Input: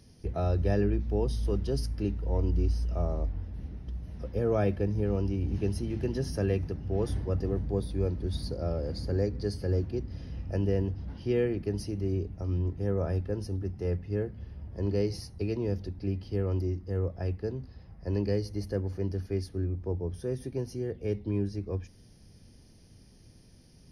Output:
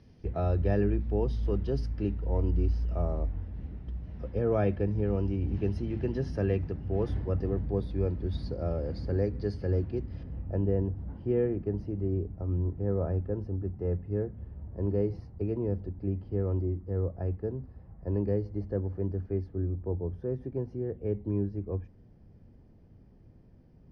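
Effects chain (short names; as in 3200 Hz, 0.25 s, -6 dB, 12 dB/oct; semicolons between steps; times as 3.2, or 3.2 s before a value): LPF 2900 Hz 12 dB/oct, from 10.23 s 1200 Hz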